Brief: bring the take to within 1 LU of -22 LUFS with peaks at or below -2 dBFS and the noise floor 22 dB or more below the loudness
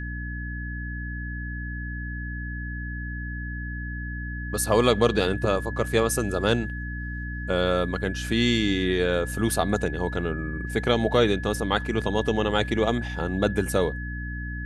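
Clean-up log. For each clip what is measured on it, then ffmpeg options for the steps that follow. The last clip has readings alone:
hum 60 Hz; highest harmonic 300 Hz; hum level -30 dBFS; steady tone 1.7 kHz; tone level -36 dBFS; loudness -26.0 LUFS; peak level -6.0 dBFS; loudness target -22.0 LUFS
-> -af "bandreject=f=60:t=h:w=6,bandreject=f=120:t=h:w=6,bandreject=f=180:t=h:w=6,bandreject=f=240:t=h:w=6,bandreject=f=300:t=h:w=6"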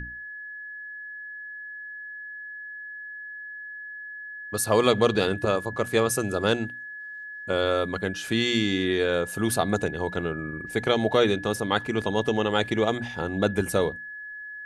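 hum not found; steady tone 1.7 kHz; tone level -36 dBFS
-> -af "bandreject=f=1700:w=30"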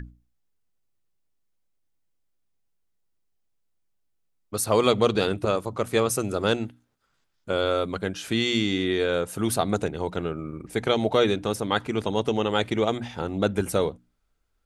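steady tone not found; loudness -25.5 LUFS; peak level -6.5 dBFS; loudness target -22.0 LUFS
-> -af "volume=1.5"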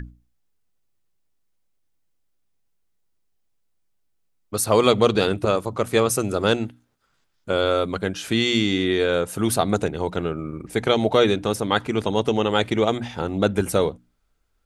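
loudness -22.0 LUFS; peak level -3.0 dBFS; noise floor -69 dBFS

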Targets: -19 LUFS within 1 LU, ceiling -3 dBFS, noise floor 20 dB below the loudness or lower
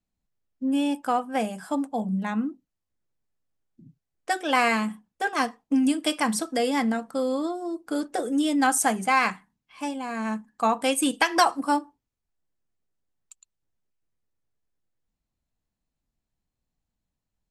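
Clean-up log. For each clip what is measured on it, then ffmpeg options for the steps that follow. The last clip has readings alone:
loudness -25.5 LUFS; peak level -7.0 dBFS; loudness target -19.0 LUFS
-> -af "volume=2.11,alimiter=limit=0.708:level=0:latency=1"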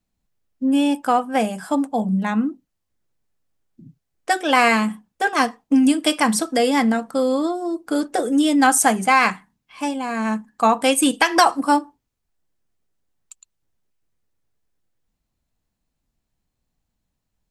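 loudness -19.5 LUFS; peak level -3.0 dBFS; noise floor -78 dBFS

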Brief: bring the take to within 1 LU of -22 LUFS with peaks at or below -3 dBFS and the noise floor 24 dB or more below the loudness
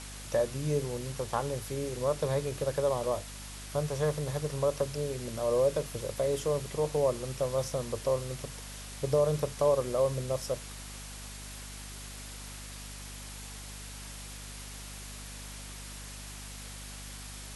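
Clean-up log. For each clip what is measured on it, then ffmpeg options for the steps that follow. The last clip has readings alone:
hum 50 Hz; highest harmonic 250 Hz; hum level -43 dBFS; noise floor -44 dBFS; noise floor target -58 dBFS; loudness -33.5 LUFS; peak level -15.5 dBFS; loudness target -22.0 LUFS
-> -af "bandreject=f=50:t=h:w=6,bandreject=f=100:t=h:w=6,bandreject=f=150:t=h:w=6,bandreject=f=200:t=h:w=6,bandreject=f=250:t=h:w=6"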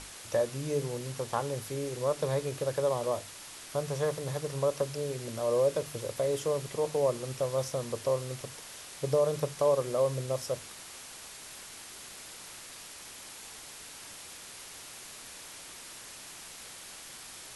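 hum not found; noise floor -47 dBFS; noise floor target -56 dBFS
-> -af "afftdn=nr=9:nf=-47"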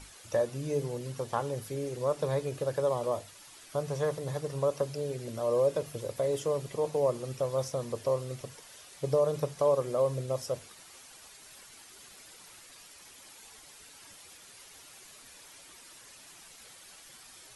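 noise floor -53 dBFS; noise floor target -56 dBFS
-> -af "afftdn=nr=6:nf=-53"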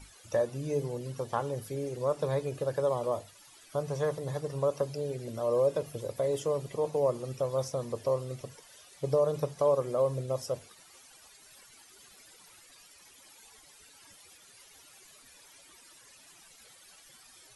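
noise floor -57 dBFS; loudness -32.0 LUFS; peak level -16.0 dBFS; loudness target -22.0 LUFS
-> -af "volume=3.16"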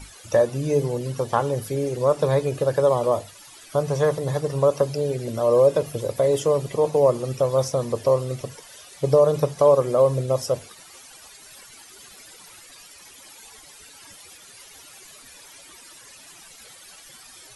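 loudness -22.0 LUFS; peak level -6.0 dBFS; noise floor -47 dBFS

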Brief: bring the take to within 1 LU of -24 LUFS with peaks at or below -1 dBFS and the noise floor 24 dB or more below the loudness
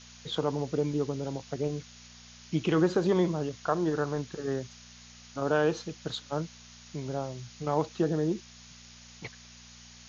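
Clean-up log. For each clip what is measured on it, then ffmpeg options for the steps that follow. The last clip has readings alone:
hum 60 Hz; highest harmonic 240 Hz; hum level -48 dBFS; noise floor -52 dBFS; noise floor target -55 dBFS; loudness -31.0 LUFS; peak level -13.0 dBFS; loudness target -24.0 LUFS
-> -af "bandreject=f=60:t=h:w=4,bandreject=f=120:t=h:w=4,bandreject=f=180:t=h:w=4,bandreject=f=240:t=h:w=4"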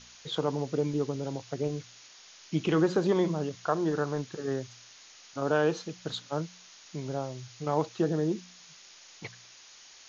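hum not found; noise floor -53 dBFS; noise floor target -55 dBFS
-> -af "afftdn=nr=6:nf=-53"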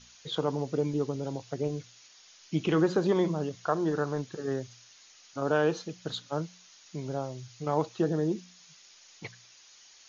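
noise floor -57 dBFS; loudness -31.0 LUFS; peak level -13.5 dBFS; loudness target -24.0 LUFS
-> -af "volume=2.24"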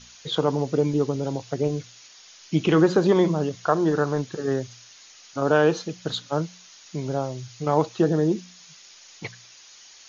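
loudness -24.0 LUFS; peak level -6.5 dBFS; noise floor -50 dBFS

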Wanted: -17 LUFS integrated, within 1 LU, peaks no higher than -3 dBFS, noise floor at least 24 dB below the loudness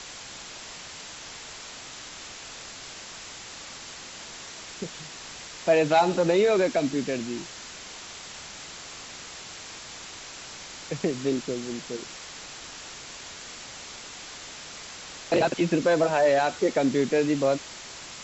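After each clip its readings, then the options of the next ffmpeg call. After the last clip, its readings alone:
noise floor -42 dBFS; noise floor target -53 dBFS; loudness -28.5 LUFS; peak level -10.0 dBFS; loudness target -17.0 LUFS
-> -af "afftdn=nr=11:nf=-42"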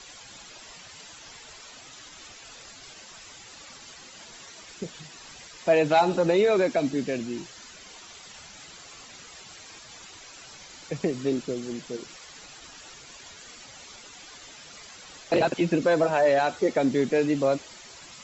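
noise floor -47 dBFS; noise floor target -49 dBFS
-> -af "afftdn=nr=6:nf=-47"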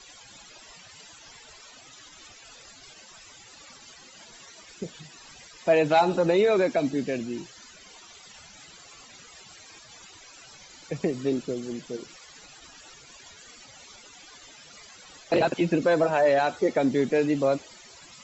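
noise floor -50 dBFS; loudness -25.0 LUFS; peak level -10.0 dBFS; loudness target -17.0 LUFS
-> -af "volume=2.51,alimiter=limit=0.708:level=0:latency=1"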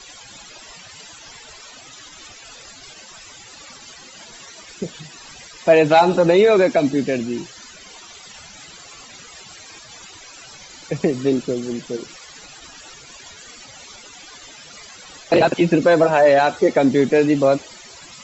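loudness -17.0 LUFS; peak level -3.0 dBFS; noise floor -42 dBFS

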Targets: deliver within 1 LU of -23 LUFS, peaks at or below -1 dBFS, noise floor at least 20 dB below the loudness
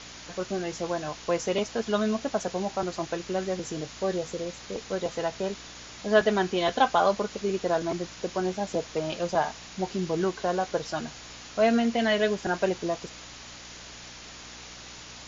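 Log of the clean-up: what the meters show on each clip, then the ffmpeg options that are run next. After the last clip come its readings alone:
hum 60 Hz; highest harmonic 300 Hz; hum level -53 dBFS; noise floor -45 dBFS; noise floor target -49 dBFS; loudness -28.5 LUFS; peak level -8.0 dBFS; loudness target -23.0 LUFS
-> -af "bandreject=f=60:t=h:w=4,bandreject=f=120:t=h:w=4,bandreject=f=180:t=h:w=4,bandreject=f=240:t=h:w=4,bandreject=f=300:t=h:w=4"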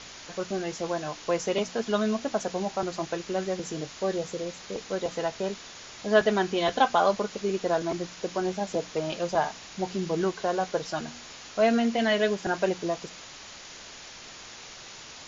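hum not found; noise floor -45 dBFS; noise floor target -49 dBFS
-> -af "afftdn=nr=6:nf=-45"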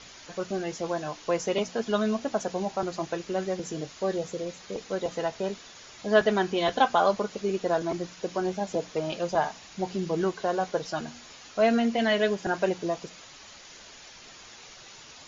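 noise floor -49 dBFS; loudness -28.5 LUFS; peak level -8.0 dBFS; loudness target -23.0 LUFS
-> -af "volume=1.88"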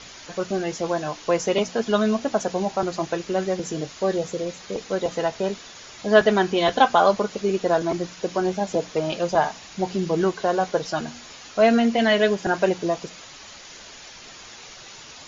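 loudness -23.0 LUFS; peak level -3.0 dBFS; noise floor -43 dBFS

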